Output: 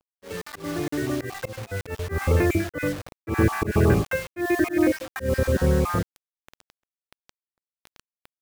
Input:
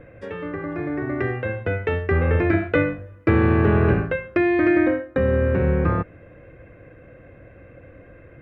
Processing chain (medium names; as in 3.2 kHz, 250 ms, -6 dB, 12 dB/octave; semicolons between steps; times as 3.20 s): random holes in the spectrogram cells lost 32%; word length cut 6-bit, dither none; slow attack 138 ms